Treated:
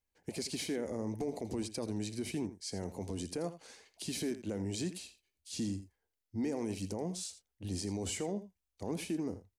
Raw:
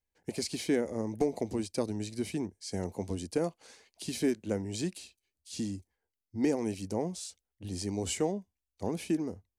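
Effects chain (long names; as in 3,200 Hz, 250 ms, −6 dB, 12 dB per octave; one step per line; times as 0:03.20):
brickwall limiter −28 dBFS, peak gain reduction 10 dB
single-tap delay 82 ms −13.5 dB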